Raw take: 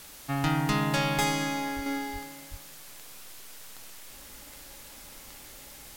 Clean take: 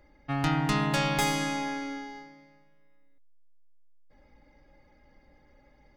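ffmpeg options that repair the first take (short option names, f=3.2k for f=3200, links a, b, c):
-filter_complex "[0:a]adeclick=t=4,asplit=3[a][b][c];[a]afade=t=out:st=1.75:d=0.02[d];[b]highpass=f=140:w=0.5412,highpass=f=140:w=1.3066,afade=t=in:st=1.75:d=0.02,afade=t=out:st=1.87:d=0.02[e];[c]afade=t=in:st=1.87:d=0.02[f];[d][e][f]amix=inputs=3:normalize=0,asplit=3[g][h][i];[g]afade=t=out:st=2.12:d=0.02[j];[h]highpass=f=140:w=0.5412,highpass=f=140:w=1.3066,afade=t=in:st=2.12:d=0.02,afade=t=out:st=2.24:d=0.02[k];[i]afade=t=in:st=2.24:d=0.02[l];[j][k][l]amix=inputs=3:normalize=0,asplit=3[m][n][o];[m]afade=t=out:st=2.5:d=0.02[p];[n]highpass=f=140:w=0.5412,highpass=f=140:w=1.3066,afade=t=in:st=2.5:d=0.02,afade=t=out:st=2.62:d=0.02[q];[o]afade=t=in:st=2.62:d=0.02[r];[p][q][r]amix=inputs=3:normalize=0,afwtdn=0.0045,asetnsamples=n=441:p=0,asendcmd='1.86 volume volume -5.5dB',volume=0dB"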